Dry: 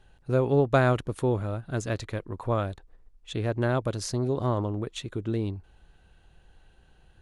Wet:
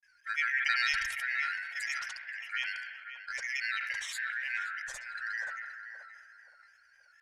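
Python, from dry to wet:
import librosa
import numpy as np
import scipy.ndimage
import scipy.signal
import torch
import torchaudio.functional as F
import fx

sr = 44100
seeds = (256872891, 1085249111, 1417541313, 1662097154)

y = fx.band_shuffle(x, sr, order='3142')
y = fx.granulator(y, sr, seeds[0], grain_ms=100.0, per_s=20.0, spray_ms=100.0, spread_st=3)
y = fx.tone_stack(y, sr, knobs='10-0-10')
y = fx.echo_banded(y, sr, ms=526, feedback_pct=50, hz=590.0, wet_db=-4.0)
y = fx.rev_spring(y, sr, rt60_s=2.3, pass_ms=(32, 51), chirp_ms=70, drr_db=11.5)
y = fx.sustainer(y, sr, db_per_s=39.0)
y = y * librosa.db_to_amplitude(-3.5)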